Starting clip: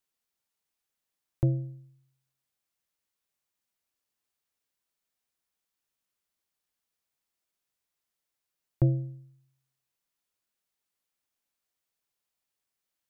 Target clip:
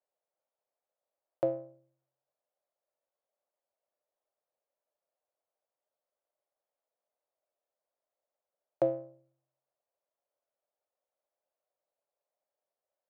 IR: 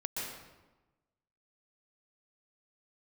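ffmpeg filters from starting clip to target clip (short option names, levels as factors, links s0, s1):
-af "adynamicsmooth=sensitivity=7.5:basefreq=930,highpass=f=590:t=q:w=4.9,volume=1.33"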